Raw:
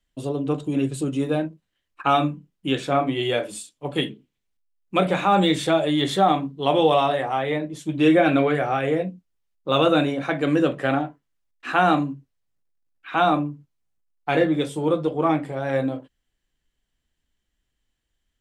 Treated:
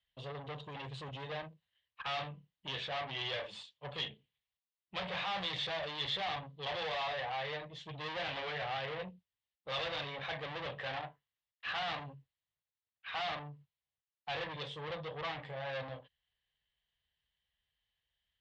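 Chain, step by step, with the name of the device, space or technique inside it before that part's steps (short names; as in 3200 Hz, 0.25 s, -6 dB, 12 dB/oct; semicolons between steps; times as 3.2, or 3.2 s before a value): scooped metal amplifier (tube stage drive 29 dB, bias 0.45; speaker cabinet 95–3500 Hz, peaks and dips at 480 Hz +4 dB, 1400 Hz -9 dB, 2400 Hz -6 dB; passive tone stack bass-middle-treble 10-0-10); gain +6 dB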